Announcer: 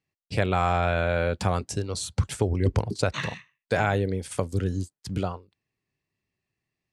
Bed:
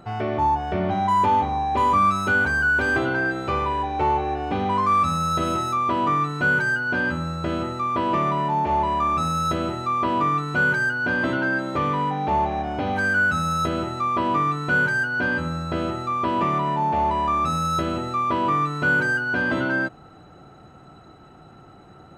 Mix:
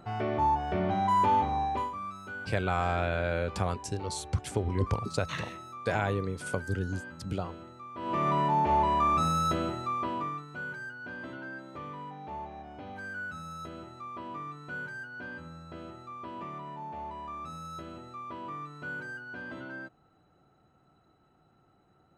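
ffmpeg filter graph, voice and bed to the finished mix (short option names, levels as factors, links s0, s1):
-filter_complex "[0:a]adelay=2150,volume=0.531[s0];[1:a]volume=3.76,afade=t=out:st=1.64:d=0.27:silence=0.177828,afade=t=in:st=7.95:d=0.4:silence=0.141254,afade=t=out:st=9.28:d=1.19:silence=0.177828[s1];[s0][s1]amix=inputs=2:normalize=0"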